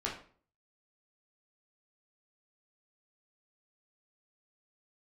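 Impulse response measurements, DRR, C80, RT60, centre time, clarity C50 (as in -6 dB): -4.5 dB, 11.5 dB, 0.45 s, 28 ms, 6.0 dB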